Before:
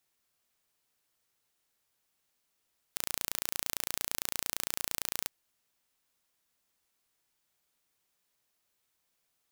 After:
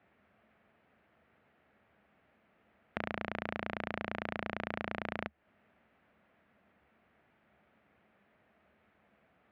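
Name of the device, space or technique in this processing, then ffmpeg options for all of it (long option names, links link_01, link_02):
bass amplifier: -af "highshelf=frequency=4000:gain=-9.5,acompressor=threshold=-46dB:ratio=4,highpass=73,equalizer=frequency=74:width_type=q:width=4:gain=8,equalizer=frequency=210:width_type=q:width=4:gain=10,equalizer=frequency=650:width_type=q:width=4:gain=5,equalizer=frequency=1000:width_type=q:width=4:gain=-5,lowpass=frequency=2300:width=0.5412,lowpass=frequency=2300:width=1.3066,volume=18dB"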